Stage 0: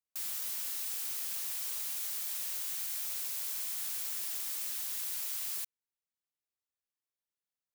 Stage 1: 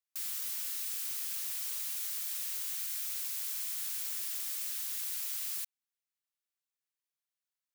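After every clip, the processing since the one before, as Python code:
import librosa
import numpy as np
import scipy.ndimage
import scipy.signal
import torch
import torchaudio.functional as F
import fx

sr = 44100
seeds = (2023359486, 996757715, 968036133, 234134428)

y = scipy.signal.sosfilt(scipy.signal.butter(2, 1100.0, 'highpass', fs=sr, output='sos'), x)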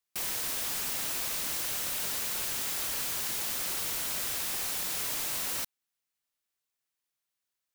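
y = (np.mod(10.0 ** (33.0 / 20.0) * x + 1.0, 2.0) - 1.0) / 10.0 ** (33.0 / 20.0)
y = y * librosa.db_to_amplitude(5.5)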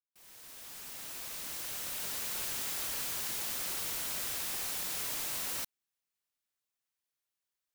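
y = fx.fade_in_head(x, sr, length_s=2.42)
y = y * librosa.db_to_amplitude(-3.5)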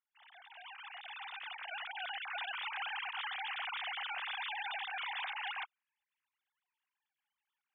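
y = fx.sine_speech(x, sr)
y = y * librosa.db_to_amplitude(-4.0)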